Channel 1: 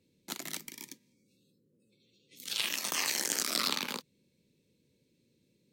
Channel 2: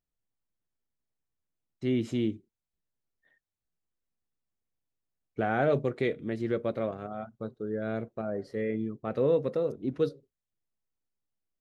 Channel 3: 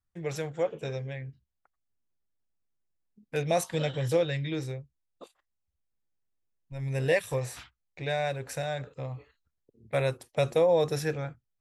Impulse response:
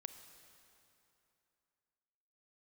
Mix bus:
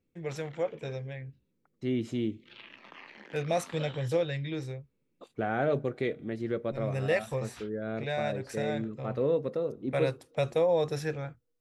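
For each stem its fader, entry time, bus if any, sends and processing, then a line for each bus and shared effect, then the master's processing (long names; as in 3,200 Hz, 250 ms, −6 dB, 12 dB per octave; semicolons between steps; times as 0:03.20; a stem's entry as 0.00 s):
−8.5 dB, 0.00 s, send −12 dB, low-pass filter 2,700 Hz 24 dB per octave; downward compressor 2 to 1, threshold −42 dBFS, peak gain reduction 6.5 dB
−3.0 dB, 0.00 s, send −16 dB, no processing
−2.5 dB, 0.00 s, no send, high-shelf EQ 9,600 Hz −11 dB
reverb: on, RT60 2.9 s, pre-delay 28 ms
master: no processing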